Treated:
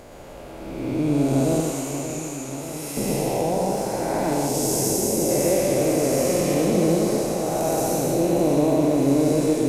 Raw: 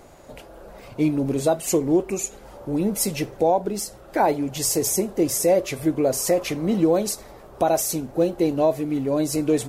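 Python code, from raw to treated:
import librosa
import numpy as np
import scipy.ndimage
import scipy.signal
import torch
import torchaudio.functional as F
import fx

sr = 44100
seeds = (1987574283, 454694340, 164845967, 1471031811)

y = fx.spec_blur(x, sr, span_ms=514.0)
y = fx.highpass(y, sr, hz=910.0, slope=12, at=(1.6, 2.97))
y = fx.peak_eq(y, sr, hz=1700.0, db=-8.5, octaves=1.2, at=(4.34, 5.31))
y = y + 10.0 ** (-4.0 / 20.0) * np.pad(y, (int(118 * sr / 1000.0), 0))[:len(y)]
y = fx.echo_warbled(y, sr, ms=584, feedback_pct=70, rate_hz=2.8, cents=73, wet_db=-10)
y = y * librosa.db_to_amplitude(5.0)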